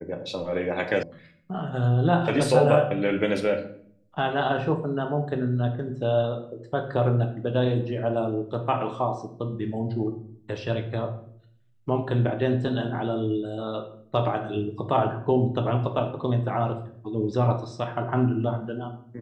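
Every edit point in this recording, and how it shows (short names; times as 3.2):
1.03 sound cut off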